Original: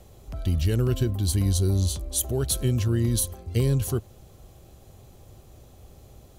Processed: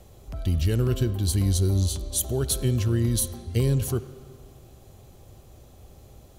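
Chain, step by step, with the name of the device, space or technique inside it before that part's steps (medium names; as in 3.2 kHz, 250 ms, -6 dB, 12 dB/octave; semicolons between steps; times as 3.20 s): filtered reverb send (on a send: high-pass 230 Hz 6 dB/octave + low-pass 5.1 kHz 12 dB/octave + reverberation RT60 1.9 s, pre-delay 48 ms, DRR 13.5 dB)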